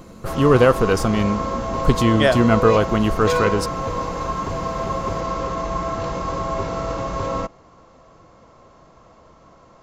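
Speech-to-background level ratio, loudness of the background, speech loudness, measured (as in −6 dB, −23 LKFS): 6.5 dB, −25.0 LKFS, −18.5 LKFS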